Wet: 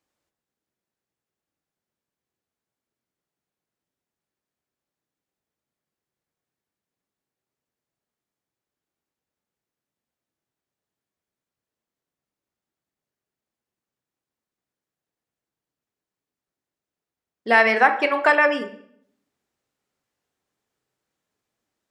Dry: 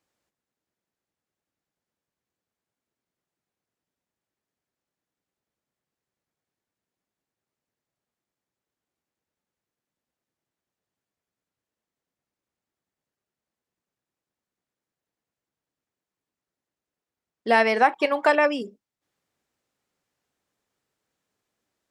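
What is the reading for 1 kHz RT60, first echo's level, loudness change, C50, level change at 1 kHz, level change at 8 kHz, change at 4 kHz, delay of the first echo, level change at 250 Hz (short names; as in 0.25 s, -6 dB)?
0.60 s, none, +3.0 dB, 11.5 dB, +2.0 dB, n/a, +1.5 dB, none, 0.0 dB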